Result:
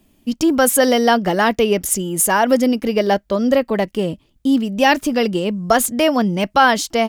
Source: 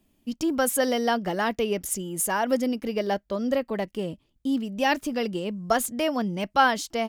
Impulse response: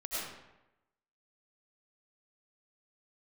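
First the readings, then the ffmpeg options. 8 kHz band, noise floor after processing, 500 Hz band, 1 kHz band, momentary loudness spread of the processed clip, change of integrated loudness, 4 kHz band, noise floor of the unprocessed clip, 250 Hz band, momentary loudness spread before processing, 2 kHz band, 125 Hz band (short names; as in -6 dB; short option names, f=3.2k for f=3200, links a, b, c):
+10.0 dB, -60 dBFS, +9.5 dB, +8.5 dB, 6 LU, +9.5 dB, +9.5 dB, -70 dBFS, +10.0 dB, 8 LU, +9.0 dB, +10.0 dB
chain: -af "alimiter=level_in=12dB:limit=-1dB:release=50:level=0:latency=1,volume=-2dB"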